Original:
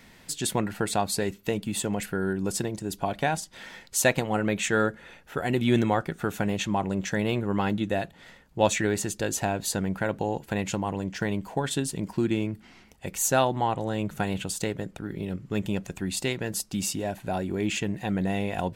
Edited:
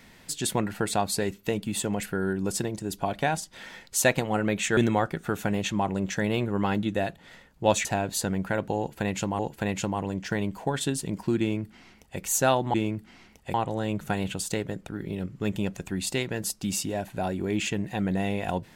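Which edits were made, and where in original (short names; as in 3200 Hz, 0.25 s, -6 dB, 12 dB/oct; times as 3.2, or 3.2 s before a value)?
4.77–5.72 cut
8.8–9.36 cut
10.29–10.9 loop, 2 plays
12.3–13.1 copy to 13.64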